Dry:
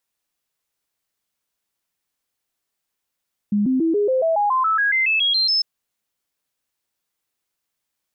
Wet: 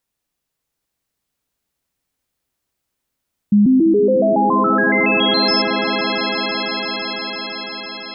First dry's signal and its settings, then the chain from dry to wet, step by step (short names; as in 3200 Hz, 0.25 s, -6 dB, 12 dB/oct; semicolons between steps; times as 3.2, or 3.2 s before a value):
stepped sine 206 Hz up, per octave 3, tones 15, 0.14 s, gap 0.00 s -15.5 dBFS
low shelf 420 Hz +9.5 dB; on a send: swelling echo 0.168 s, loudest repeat 5, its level -11.5 dB